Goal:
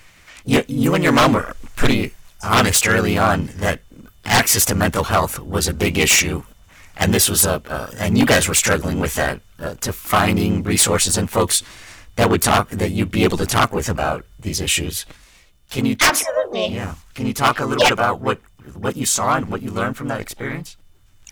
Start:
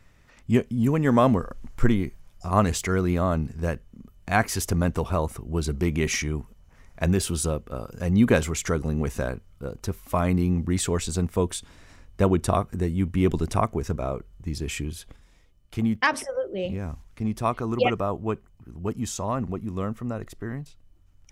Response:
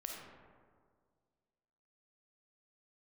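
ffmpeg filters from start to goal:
-filter_complex "[0:a]asplit=3[a][b][c];[b]asetrate=52444,aresample=44100,atempo=0.840896,volume=0dB[d];[c]asetrate=88200,aresample=44100,atempo=0.5,volume=-17dB[e];[a][d][e]amix=inputs=3:normalize=0,tiltshelf=f=810:g=-6.5,aeval=exprs='0.211*(abs(mod(val(0)/0.211+3,4)-2)-1)':c=same,volume=7dB"

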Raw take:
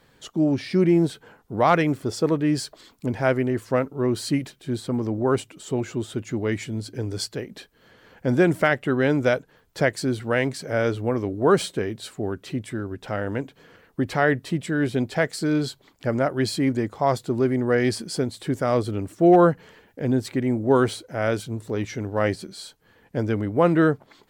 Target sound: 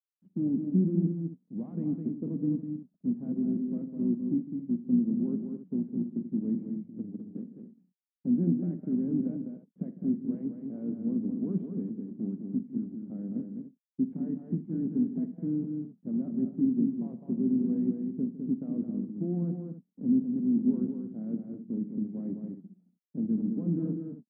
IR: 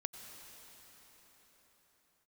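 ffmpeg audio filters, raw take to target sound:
-af "afftdn=nr=13:nf=-35,acontrast=67,aemphasis=mode=production:type=bsi,alimiter=limit=-10dB:level=0:latency=1:release=18,tremolo=f=180:d=0.462,aresample=8000,acrusher=bits=5:dc=4:mix=0:aa=0.000001,aresample=44100,asuperpass=centerf=210:order=4:qfactor=2.5,aecho=1:1:46|84|155|207|273:0.188|0.133|0.158|0.501|0.211,volume=2dB"

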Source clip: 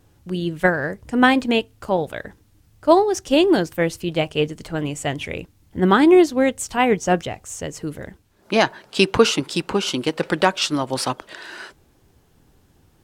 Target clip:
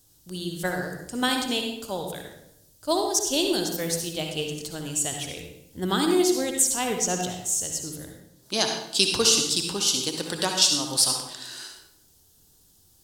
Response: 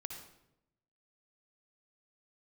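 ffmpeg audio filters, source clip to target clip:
-filter_complex "[0:a]aexciter=amount=10.3:drive=1.2:freq=3.4k[a];[1:a]atrim=start_sample=2205[b];[a][b]afir=irnorm=-1:irlink=0,volume=-7.5dB"

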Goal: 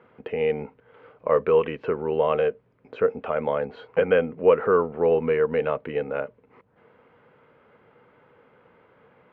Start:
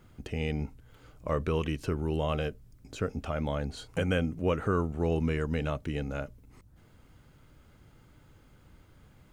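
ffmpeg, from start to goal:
-af "highpass=280,equalizer=f=310:t=q:w=4:g=-8,equalizer=f=470:t=q:w=4:g=10,equalizer=f=980:t=q:w=4:g=4,lowpass=f=2.5k:w=0.5412,lowpass=f=2.5k:w=1.3066,volume=6.5dB"

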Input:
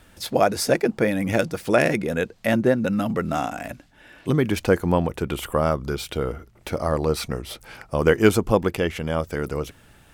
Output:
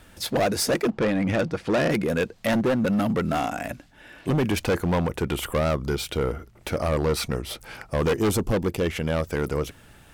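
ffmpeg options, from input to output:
-filter_complex "[0:a]asettb=1/sr,asplit=3[a][b][c];[a]atrim=end=8.134[d];[b]atrim=start=8.13:end=8.86,asetpts=PTS-STARTPTS,afade=t=in:d=0.004:c=qsin,afade=t=out:st=0.726:d=0.004:c=qsin,equalizer=f=1.7k:w=0.72:g=-7.5[e];[c]atrim=start=8.856[f];[d][e]acrossfade=d=0.004:c1=hsin:c2=qsin[g];[g][f]acrossfade=d=0.004:c1=qsin:c2=hsin,asoftclip=type=hard:threshold=-20dB,asettb=1/sr,asplit=3[h][i][j];[h]atrim=end=0.904[k];[i]atrim=start=0.9:end=1.9,asetpts=PTS-STARTPTS,afade=t=in:d=0.004:c=qsin,afade=t=out:st=0.996:d=0.004:c=qsin,adynamicsmooth=sensitivity=1.5:basefreq=4.3k[l];[j]atrim=start=1.896[m];[k][l]acrossfade=d=0.004:c1=hsin:c2=qsin[n];[n][m]acrossfade=d=0.004:c1=qsin:c2=hsin,volume=1.5dB"

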